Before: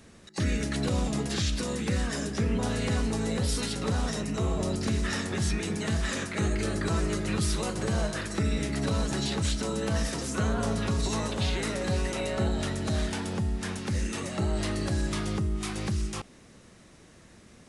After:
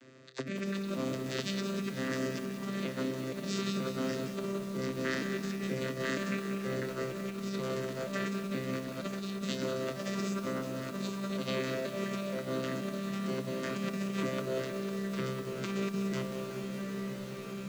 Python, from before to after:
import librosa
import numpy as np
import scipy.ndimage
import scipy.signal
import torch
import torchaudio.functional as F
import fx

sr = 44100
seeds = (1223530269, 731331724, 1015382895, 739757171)

y = fx.vocoder_arp(x, sr, chord='bare fifth', root=48, every_ms=474)
y = fx.lowpass(y, sr, hz=2400.0, slope=6)
y = fx.tilt_eq(y, sr, slope=2.5)
y = fx.doubler(y, sr, ms=29.0, db=-10)
y = fx.echo_diffused(y, sr, ms=1926, feedback_pct=42, wet_db=-10)
y = fx.over_compress(y, sr, threshold_db=-40.0, ratio=-1.0)
y = scipy.signal.sosfilt(scipy.signal.butter(2, 220.0, 'highpass', fs=sr, output='sos'), y)
y = fx.peak_eq(y, sr, hz=810.0, db=-14.0, octaves=0.53)
y = fx.echo_crushed(y, sr, ms=188, feedback_pct=80, bits=9, wet_db=-9)
y = F.gain(torch.from_numpy(y), 8.0).numpy()